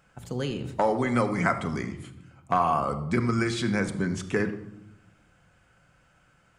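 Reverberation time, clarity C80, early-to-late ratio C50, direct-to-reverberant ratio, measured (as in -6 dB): 0.85 s, 13.5 dB, 11.0 dB, 7.0 dB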